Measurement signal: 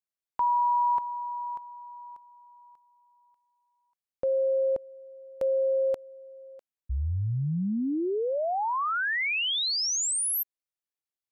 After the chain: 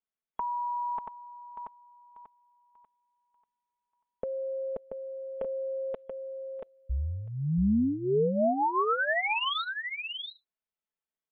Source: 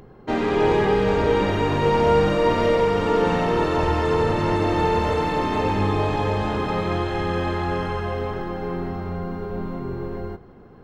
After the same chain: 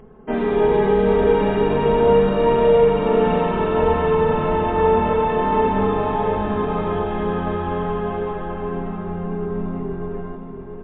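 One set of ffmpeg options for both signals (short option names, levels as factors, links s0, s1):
-af "highshelf=f=2600:g=-9,aecho=1:1:4.6:0.7,aecho=1:1:682:0.501" -ar 8000 -c:a libmp3lame -b:a 64k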